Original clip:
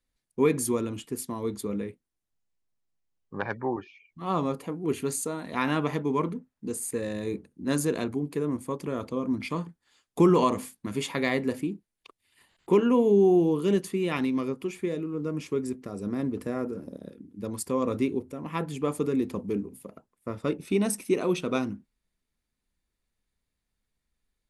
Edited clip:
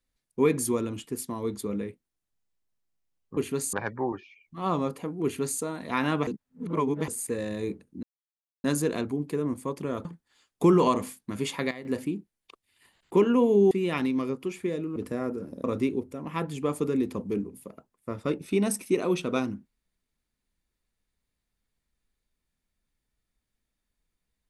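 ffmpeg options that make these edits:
-filter_complex "[0:a]asplit=12[s0][s1][s2][s3][s4][s5][s6][s7][s8][s9][s10][s11];[s0]atrim=end=3.372[s12];[s1]atrim=start=4.878:end=5.242[s13];[s2]atrim=start=3.368:end=5.912[s14];[s3]atrim=start=5.908:end=6.722,asetpts=PTS-STARTPTS,areverse[s15];[s4]atrim=start=6.718:end=7.67,asetpts=PTS-STARTPTS,afade=t=out:st=0.948:d=0.004:c=hsin,apad=pad_dur=0.61[s16];[s5]atrim=start=7.67:end=9.082,asetpts=PTS-STARTPTS,afade=t=in:d=0.004:c=hsin[s17];[s6]atrim=start=9.608:end=11.27,asetpts=PTS-STARTPTS,afade=t=out:st=1.372:d=0.29:c=log:silence=0.188365[s18];[s7]atrim=start=11.27:end=11.41,asetpts=PTS-STARTPTS,volume=0.188[s19];[s8]atrim=start=11.41:end=13.272,asetpts=PTS-STARTPTS,afade=t=in:d=0.29:c=log:silence=0.188365[s20];[s9]atrim=start=13.898:end=15.152[s21];[s10]atrim=start=16.308:end=16.992[s22];[s11]atrim=start=17.828[s23];[s12][s13]acrossfade=d=0.004:c1=hsin:c2=hsin[s24];[s24][s14]acrossfade=d=0.004:c1=hsin:c2=hsin[s25];[s25][s15]acrossfade=d=0.004:c1=hsin:c2=hsin[s26];[s16][s17]concat=n=2:v=0:a=1[s27];[s26][s27]acrossfade=d=0.004:c1=hsin:c2=hsin[s28];[s18][s19][s20]concat=n=3:v=0:a=1[s29];[s28][s29]acrossfade=d=0.004:c1=hsin:c2=hsin[s30];[s30][s21]acrossfade=d=0.004:c1=hsin:c2=hsin[s31];[s31][s22]acrossfade=d=0.004:c1=hsin:c2=hsin[s32];[s32][s23]acrossfade=d=0.004:c1=hsin:c2=hsin"

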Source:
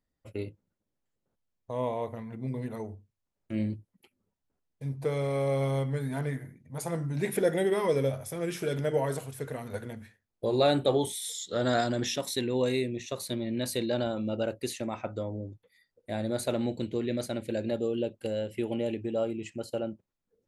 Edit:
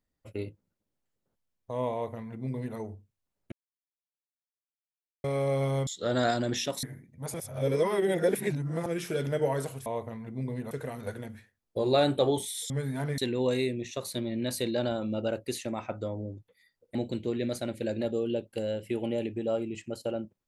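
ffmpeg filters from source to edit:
-filter_complex "[0:a]asplit=12[s0][s1][s2][s3][s4][s5][s6][s7][s8][s9][s10][s11];[s0]atrim=end=3.52,asetpts=PTS-STARTPTS,afade=t=out:st=3.516:d=0.004:c=hsin[s12];[s1]atrim=start=3.52:end=5.24,asetpts=PTS-STARTPTS,volume=0[s13];[s2]atrim=start=5.24:end=5.872,asetpts=PTS-STARTPTS,afade=t=in:d=0.004:c=hsin[s14];[s3]atrim=start=11.368:end=12.332[s15];[s4]atrim=start=6.348:end=6.862[s16];[s5]atrim=start=6.858:end=8.382,asetpts=PTS-STARTPTS,areverse[s17];[s6]atrim=start=8.378:end=9.382[s18];[s7]atrim=start=1.918:end=2.772[s19];[s8]atrim=start=9.378:end=11.372[s20];[s9]atrim=start=5.868:end=6.352[s21];[s10]atrim=start=12.328:end=16.102[s22];[s11]atrim=start=16.628[s23];[s12][s13][s14]concat=n=3:v=0:a=1[s24];[s24][s15]acrossfade=d=0.004:c1=hsin:c2=hsin[s25];[s25][s16]acrossfade=d=0.004:c1=hsin:c2=hsin[s26];[s26][s17]acrossfade=d=0.004:c1=hsin:c2=hsin[s27];[s27][s18]acrossfade=d=0.004:c1=hsin:c2=hsin[s28];[s28][s19]acrossfade=d=0.004:c1=hsin:c2=hsin[s29];[s29][s20]acrossfade=d=0.004:c1=hsin:c2=hsin[s30];[s30][s21]acrossfade=d=0.004:c1=hsin:c2=hsin[s31];[s31][s22]acrossfade=d=0.004:c1=hsin:c2=hsin[s32];[s32][s23]acrossfade=d=0.004:c1=hsin:c2=hsin"

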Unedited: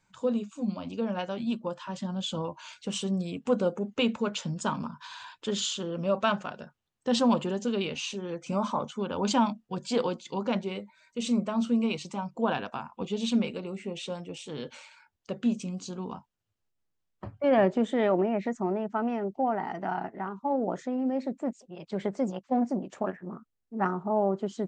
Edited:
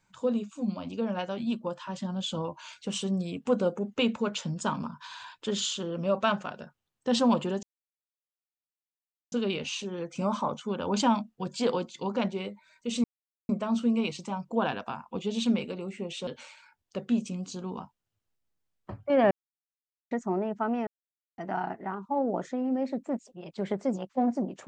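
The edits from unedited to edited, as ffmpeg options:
-filter_complex "[0:a]asplit=8[s0][s1][s2][s3][s4][s5][s6][s7];[s0]atrim=end=7.63,asetpts=PTS-STARTPTS,afade=t=out:st=7.626:d=0.004:c=hsin,apad=pad_dur=1.69[s8];[s1]atrim=start=7.63:end=11.35,asetpts=PTS-STARTPTS,afade=t=in:d=0.004:c=hsin,afade=t=out:st=3.716:d=0.004:c=hsin,apad=pad_dur=0.45[s9];[s2]atrim=start=11.35:end=14.132,asetpts=PTS-STARTPTS,afade=t=in:d=0.004:c=hsin[s10];[s3]atrim=start=14.608:end=17.65,asetpts=PTS-STARTPTS,afade=t=out:st=3.038:d=0.004:c=hsin[s11];[s4]atrim=start=17.65:end=18.45,asetpts=PTS-STARTPTS,volume=0[s12];[s5]atrim=start=18.45:end=19.21,asetpts=PTS-STARTPTS,afade=t=in:d=0.004:c=hsin,afade=t=out:st=0.756:d=0.004:c=hsin[s13];[s6]atrim=start=19.21:end=19.72,asetpts=PTS-STARTPTS,volume=0[s14];[s7]atrim=start=19.72,asetpts=PTS-STARTPTS,afade=t=in:d=0.004:c=hsin[s15];[s8][s9][s10]concat=n=3:v=0:a=1[s16];[s11][s12][s13][s14][s15]concat=n=5:v=0:a=1[s17];[s16][s17]acrossfade=d=0.004:c1=hsin:c2=hsin"

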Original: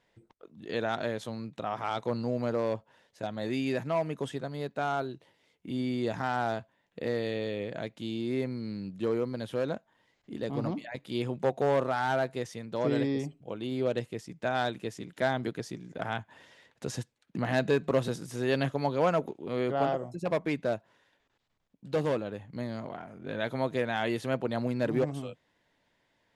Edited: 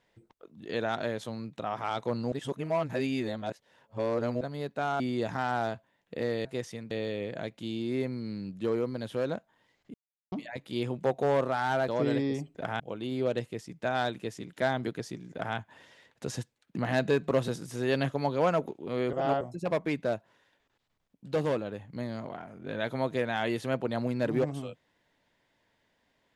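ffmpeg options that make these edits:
-filter_complex "[0:a]asplit=13[s0][s1][s2][s3][s4][s5][s6][s7][s8][s9][s10][s11][s12];[s0]atrim=end=2.322[s13];[s1]atrim=start=2.318:end=4.412,asetpts=PTS-STARTPTS,areverse[s14];[s2]atrim=start=4.408:end=5.002[s15];[s3]atrim=start=5.848:end=7.302[s16];[s4]atrim=start=12.268:end=12.732[s17];[s5]atrim=start=7.298:end=10.33,asetpts=PTS-STARTPTS,afade=t=out:st=3.028:d=0.004:c=hsin[s18];[s6]atrim=start=10.33:end=10.71,asetpts=PTS-STARTPTS,volume=0[s19];[s7]atrim=start=10.71:end=12.272,asetpts=PTS-STARTPTS,afade=t=in:d=0.004:c=hsin[s20];[s8]atrim=start=12.728:end=13.402[s21];[s9]atrim=start=15.918:end=16.172[s22];[s10]atrim=start=13.398:end=19.732[s23];[s11]atrim=start=19.728:end=20.012,asetpts=PTS-STARTPTS,areverse[s24];[s12]atrim=start=20.008[s25];[s13][s14]acrossfade=d=0.004:c1=hsin:c2=hsin[s26];[s26][s15]acrossfade=d=0.004:c1=hsin:c2=hsin[s27];[s27][s16]acrossfade=d=0.004:c1=hsin:c2=hsin[s28];[s28][s17]acrossfade=d=0.004:c1=hsin:c2=hsin[s29];[s18][s19][s20]concat=n=3:v=0:a=1[s30];[s29][s30]acrossfade=d=0.004:c1=hsin:c2=hsin[s31];[s31][s21]acrossfade=d=0.004:c1=hsin:c2=hsin[s32];[s32][s22]acrossfade=d=0.004:c1=hsin:c2=hsin[s33];[s33][s23]acrossfade=d=0.004:c1=hsin:c2=hsin[s34];[s34][s24]acrossfade=d=0.004:c1=hsin:c2=hsin[s35];[s35][s25]acrossfade=d=0.004:c1=hsin:c2=hsin"

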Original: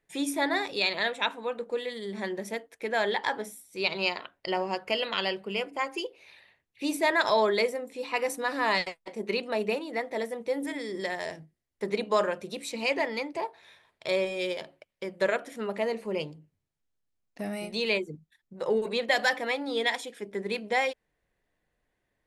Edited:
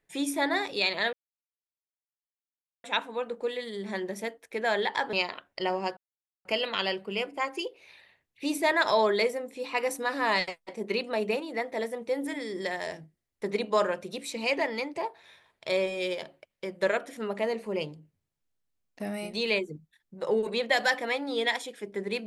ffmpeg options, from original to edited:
-filter_complex "[0:a]asplit=4[s0][s1][s2][s3];[s0]atrim=end=1.13,asetpts=PTS-STARTPTS,afade=t=out:st=1.126:d=0.004:c=hsin,apad=pad_dur=1.71[s4];[s1]atrim=start=1.13:end=3.422,asetpts=PTS-STARTPTS,afade=t=in:d=0.004:c=hsin[s5];[s2]atrim=start=3.998:end=4.84,asetpts=PTS-STARTPTS,afade=t=out:st=0.838:d=0.004:c=hsin,apad=pad_dur=0.48[s6];[s3]atrim=start=4.84,asetpts=PTS-STARTPTS,afade=t=in:d=0.004:c=hsin[s7];[s4][s5]concat=n=2:v=0:a=1[s8];[s6][s7]concat=n=2:v=0:a=1[s9];[s8][s9]acrossfade=d=0.004:c1=hsin:c2=hsin"

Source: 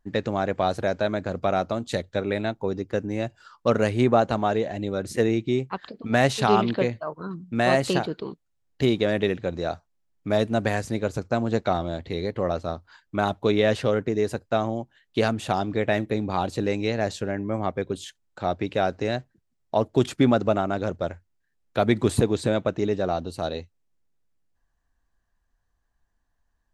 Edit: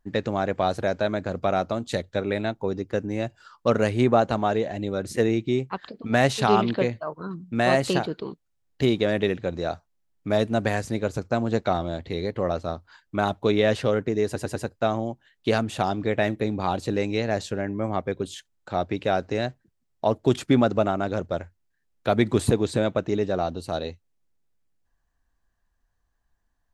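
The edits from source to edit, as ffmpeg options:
-filter_complex "[0:a]asplit=4[s0][s1][s2][s3];[s0]atrim=end=14.362[s4];[s1]atrim=start=14.258:end=14.362[s5];[s2]atrim=start=14.258:end=14.362[s6];[s3]atrim=start=14.258[s7];[s4][s5]acrossfade=d=0.004:c1=hsin:c2=hsin[s8];[s8][s6]acrossfade=d=0.004:c1=hsin:c2=hsin[s9];[s9][s7]acrossfade=d=0.004:c1=hsin:c2=hsin"

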